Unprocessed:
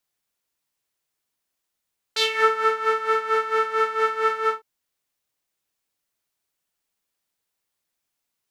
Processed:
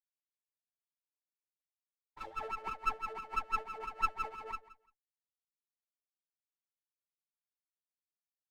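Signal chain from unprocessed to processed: vowel filter a; tilt shelf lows -4.5 dB, about 770 Hz; in parallel at -5.5 dB: sample-rate reducer 3 kHz, jitter 0%; on the sum: wah-wah 6 Hz 530–1300 Hz, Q 13; expander -55 dBFS; on a send: feedback delay 172 ms, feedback 18%, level -17 dB; on the sum: sliding maximum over 9 samples; trim +8 dB

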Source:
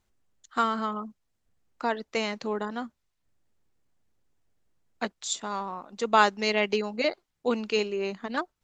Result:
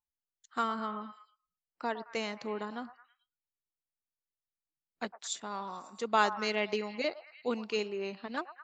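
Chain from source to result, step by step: repeats whose band climbs or falls 109 ms, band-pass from 920 Hz, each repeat 0.7 oct, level -10.5 dB; spectral noise reduction 23 dB; trim -6.5 dB

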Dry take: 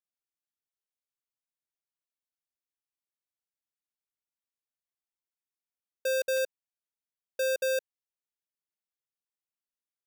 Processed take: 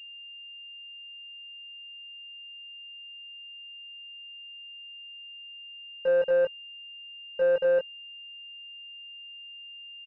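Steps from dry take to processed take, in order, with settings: doubling 21 ms -4 dB; class-D stage that switches slowly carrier 2.8 kHz; trim +2.5 dB

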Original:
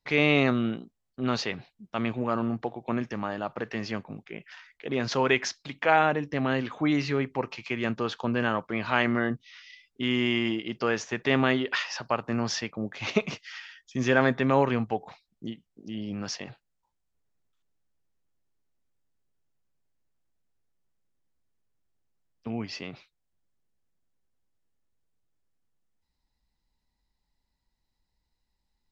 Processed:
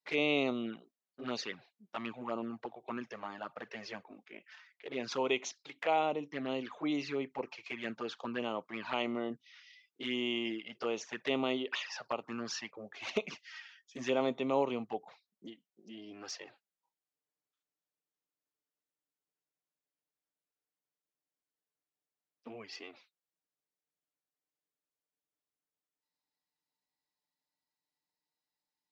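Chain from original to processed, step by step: high-pass 300 Hz 12 dB/octave; touch-sensitive flanger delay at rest 6.7 ms, full sweep at -24.5 dBFS; trim -5 dB

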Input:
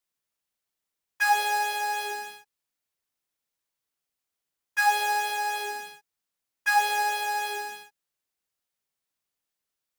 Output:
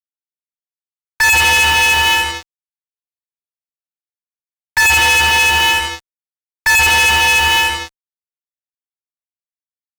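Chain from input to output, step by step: two-slope reverb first 0.44 s, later 1.7 s, DRR 3.5 dB; frequency inversion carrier 3.4 kHz; fuzz box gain 39 dB, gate -45 dBFS; trim +3.5 dB

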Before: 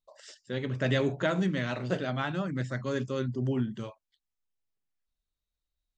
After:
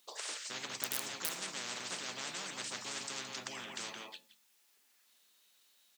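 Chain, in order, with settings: harmony voices -4 st -6 dB; tilt shelf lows -6 dB; echo from a far wall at 29 m, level -15 dB; in parallel at -4.5 dB: integer overflow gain 16.5 dB; on the sum: steep high-pass 210 Hz 36 dB/octave; feedback comb 870 Hz, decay 0.18 s, harmonics all, mix 60%; on a send at -18 dB: reverberation RT60 0.40 s, pre-delay 5 ms; on the sum: spectrum-flattening compressor 10:1; trim +7.5 dB

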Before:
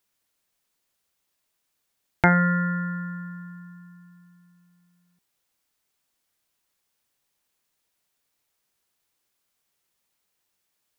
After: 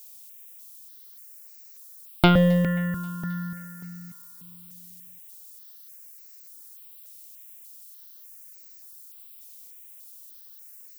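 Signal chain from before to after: tracing distortion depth 0.2 ms; peaking EQ 820 Hz -12 dB 0.3 oct; in parallel at -1.5 dB: compression, threshold -33 dBFS, peak gain reduction 18.5 dB; on the sum: small resonant body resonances 340/530 Hz, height 12 dB, ringing for 20 ms; added noise violet -47 dBFS; on a send: thinning echo 266 ms, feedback 69%, high-pass 820 Hz, level -23 dB; on the sum: stepped phaser 3.4 Hz 370–3300 Hz

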